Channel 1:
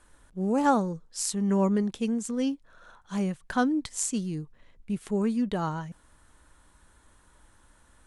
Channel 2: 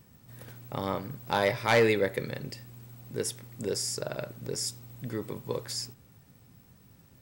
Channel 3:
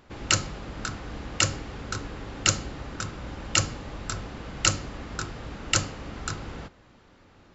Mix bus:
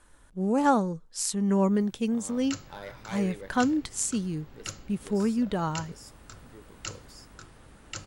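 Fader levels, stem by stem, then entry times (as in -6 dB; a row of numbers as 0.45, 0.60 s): +0.5, -16.5, -15.5 dB; 0.00, 1.40, 2.20 s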